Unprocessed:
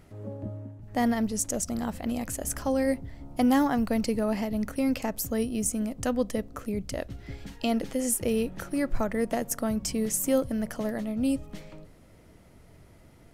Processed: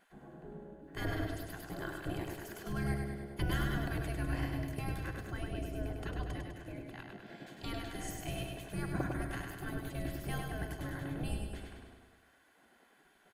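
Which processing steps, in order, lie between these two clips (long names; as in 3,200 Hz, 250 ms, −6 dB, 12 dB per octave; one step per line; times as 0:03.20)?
gate on every frequency bin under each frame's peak −20 dB weak
0:04.97–0:07.20: high-shelf EQ 5,600 Hz −10.5 dB
repeating echo 101 ms, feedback 60%, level −4.5 dB
convolution reverb RT60 0.70 s, pre-delay 3 ms, DRR 16 dB
level −1 dB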